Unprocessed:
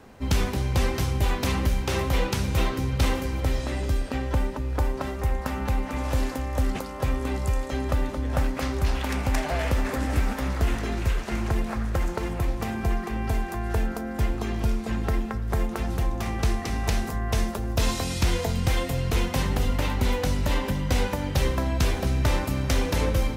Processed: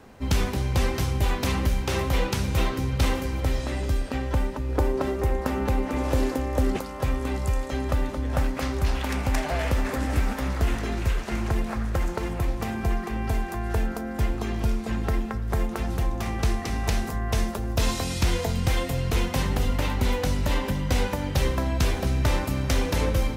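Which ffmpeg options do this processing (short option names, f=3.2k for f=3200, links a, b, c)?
-filter_complex "[0:a]asettb=1/sr,asplit=3[a][b][c];[a]atrim=end=4.694[d];[b]atrim=start=4.69:end=6.77,asetpts=PTS-STARTPTS,afade=t=in:d=0.004:c=qsin,afade=t=out:st=2.076:d=0.004:c=qsin,equalizer=f=380:w=1.2:g=8.5[e];[c]atrim=start=6.766[f];[d][e]acrossfade=d=0.004:c1=hsin:c2=qsin[g];[g][f]acrossfade=d=0.004:c1=qsin:c2=hsin"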